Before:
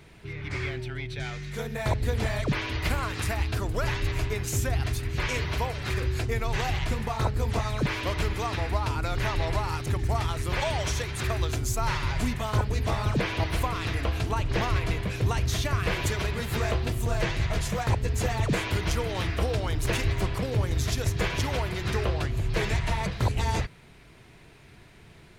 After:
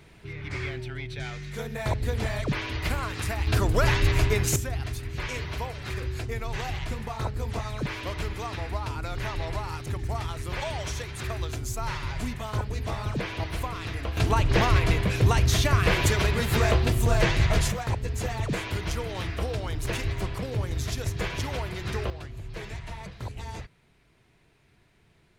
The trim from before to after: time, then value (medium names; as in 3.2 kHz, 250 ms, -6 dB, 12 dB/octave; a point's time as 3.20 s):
-1 dB
from 3.47 s +6 dB
from 4.56 s -4 dB
from 14.17 s +5 dB
from 17.72 s -3 dB
from 22.10 s -11 dB